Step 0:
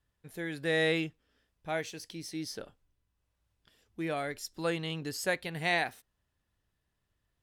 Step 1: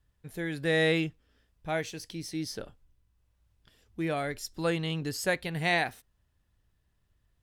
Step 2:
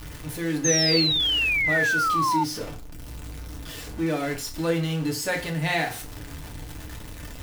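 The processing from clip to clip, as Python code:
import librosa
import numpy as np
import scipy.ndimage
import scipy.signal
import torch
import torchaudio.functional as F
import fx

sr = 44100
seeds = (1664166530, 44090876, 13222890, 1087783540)

y1 = fx.low_shelf(x, sr, hz=130.0, db=9.5)
y1 = F.gain(torch.from_numpy(y1), 2.0).numpy()
y2 = y1 + 0.5 * 10.0 ** (-32.0 / 20.0) * np.sign(y1)
y2 = fx.rev_fdn(y2, sr, rt60_s=0.36, lf_ratio=1.1, hf_ratio=0.85, size_ms=20.0, drr_db=0.5)
y2 = fx.spec_paint(y2, sr, seeds[0], shape='fall', start_s=0.64, length_s=1.8, low_hz=870.0, high_hz=6500.0, level_db=-21.0)
y2 = F.gain(torch.from_numpy(y2), -2.0).numpy()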